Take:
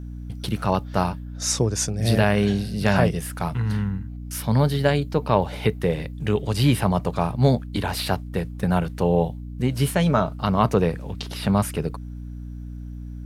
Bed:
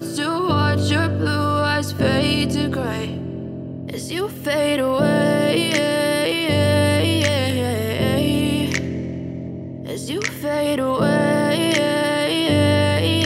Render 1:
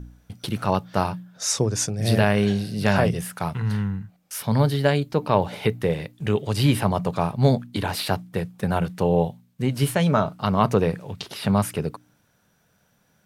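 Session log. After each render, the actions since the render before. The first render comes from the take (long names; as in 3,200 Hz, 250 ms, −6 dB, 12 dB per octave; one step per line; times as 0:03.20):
hum removal 60 Hz, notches 5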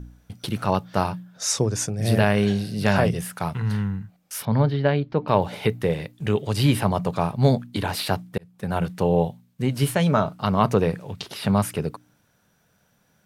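0:01.67–0:02.20: dynamic equaliser 4,400 Hz, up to −5 dB, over −38 dBFS, Q 1.2
0:04.45–0:05.28: high-frequency loss of the air 270 metres
0:08.38–0:08.84: fade in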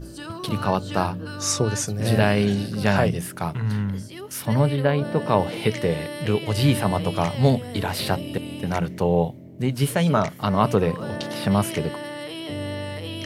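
mix in bed −14 dB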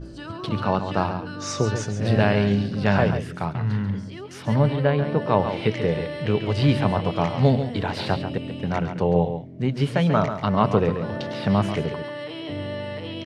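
high-frequency loss of the air 130 metres
single-tap delay 138 ms −9 dB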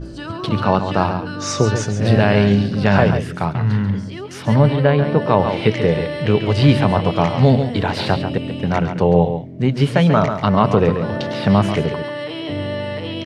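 level +6.5 dB
brickwall limiter −1 dBFS, peak gain reduction 3 dB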